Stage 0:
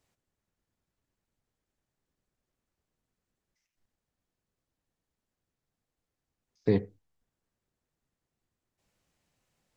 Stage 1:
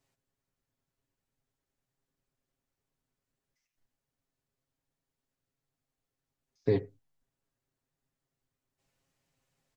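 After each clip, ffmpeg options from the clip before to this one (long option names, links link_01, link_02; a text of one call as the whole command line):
ffmpeg -i in.wav -af "aecho=1:1:7.4:0.65,volume=-3.5dB" out.wav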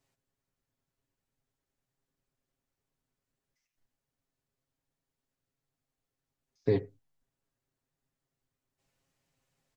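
ffmpeg -i in.wav -af anull out.wav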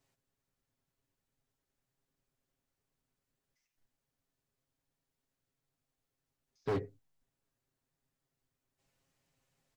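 ffmpeg -i in.wav -af "asoftclip=type=hard:threshold=-29.5dB" out.wav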